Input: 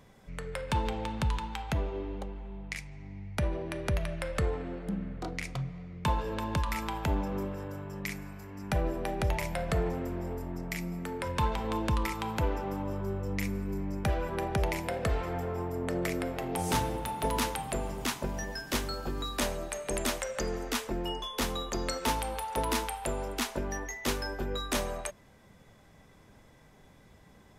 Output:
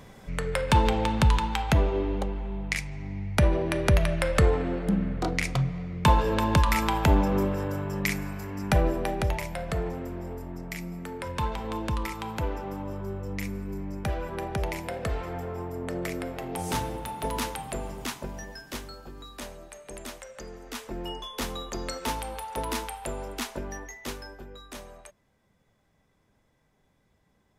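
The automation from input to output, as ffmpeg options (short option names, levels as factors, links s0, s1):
-af "volume=7.08,afade=t=out:st=8.48:d=0.98:silence=0.334965,afade=t=out:st=17.86:d=1.22:silence=0.375837,afade=t=in:st=20.62:d=0.42:silence=0.398107,afade=t=out:st=23.56:d=0.97:silence=0.298538"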